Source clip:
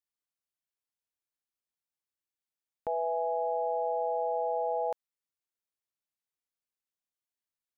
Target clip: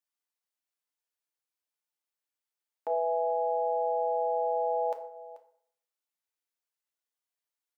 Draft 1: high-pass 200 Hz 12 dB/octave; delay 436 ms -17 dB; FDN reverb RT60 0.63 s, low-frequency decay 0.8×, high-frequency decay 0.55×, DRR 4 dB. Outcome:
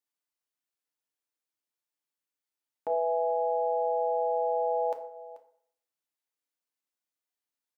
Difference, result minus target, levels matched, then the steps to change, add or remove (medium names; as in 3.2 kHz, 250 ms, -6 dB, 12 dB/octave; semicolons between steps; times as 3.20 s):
250 Hz band +4.5 dB
change: high-pass 410 Hz 12 dB/octave